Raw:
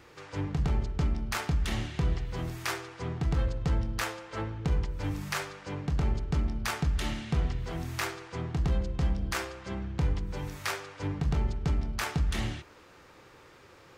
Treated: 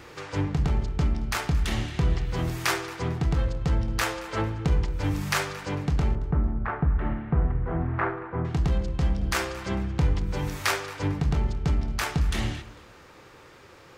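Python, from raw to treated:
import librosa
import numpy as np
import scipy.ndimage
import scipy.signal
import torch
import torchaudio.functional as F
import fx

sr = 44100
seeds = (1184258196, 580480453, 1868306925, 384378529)

y = fx.lowpass(x, sr, hz=1600.0, slope=24, at=(6.15, 8.45))
y = fx.rider(y, sr, range_db=4, speed_s=0.5)
y = fx.echo_feedback(y, sr, ms=225, feedback_pct=29, wet_db=-19.5)
y = y * librosa.db_to_amplitude(5.0)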